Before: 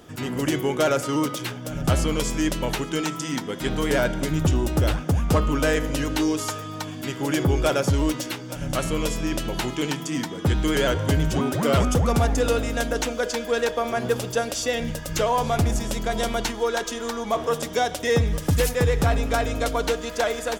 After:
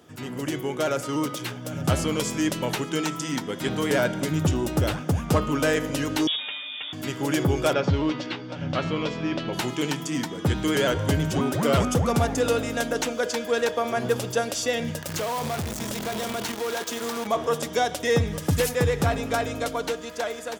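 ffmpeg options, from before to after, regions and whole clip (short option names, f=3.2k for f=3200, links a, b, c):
-filter_complex "[0:a]asettb=1/sr,asplit=3[a][b][c];[a]atrim=end=6.274[d];[b]atrim=start=6.27:end=6.93,asetpts=PTS-STARTPTS,afade=t=in:d=0.004:c=qsin,afade=t=out:st=0.656:d=0.004:c=qsin,aeval=exprs='clip(val(0),-1,0.0224)':c=same,lowpass=f=3.1k:t=q:w=0.5098,lowpass=f=3.1k:t=q:w=0.6013,lowpass=f=3.1k:t=q:w=0.9,lowpass=f=3.1k:t=q:w=2.563,afreqshift=-3700[e];[c]atrim=start=6.926[f];[d][e]acrossfade=d=0.004:c1=hsin:c2=qsin[g];[g][f]acrossfade=d=0.004:c1=qsin:c2=hsin,asettb=1/sr,asplit=3[h][i][j];[h]atrim=end=7.734[k];[i]atrim=start=7.73:end=9.53,asetpts=PTS-STARTPTS,afade=t=in:d=0.004:c=qsin,afade=t=out:st=1.796:d=0.004:c=qsin,lowpass=f=4.4k:w=0.5412,lowpass=f=4.4k:w=1.3066,asplit=2[l][m];[m]adelay=12,volume=-12dB[n];[l][n]amix=inputs=2:normalize=0,atrim=end_sample=79380[o];[j]atrim=start=9.526[p];[k][o]acrossfade=d=0.004:c1=hsin:c2=qsin[q];[q][p]acrossfade=d=0.004:c1=qsin:c2=hsin,asettb=1/sr,asplit=3[r][s][t];[r]atrim=end=15.024[u];[s]atrim=start=15.02:end=17.27,asetpts=PTS-STARTPTS,afade=t=in:d=0.004:c=qsin,afade=t=out:st=2.246:d=0.004:c=qsin,acompressor=threshold=-23dB:ratio=6:attack=3.2:release=140:knee=1:detection=peak,asoftclip=type=hard:threshold=-23.5dB,acrusher=bits=6:dc=4:mix=0:aa=0.000001[v];[t]atrim=start=17.266[w];[u][v]acrossfade=d=0.004:c1=hsin:c2=qsin[x];[x][w]acrossfade=d=0.004:c1=qsin:c2=hsin,dynaudnorm=f=190:g=13:m=5dB,highpass=f=81:w=0.5412,highpass=f=81:w=1.3066,volume=-5.5dB"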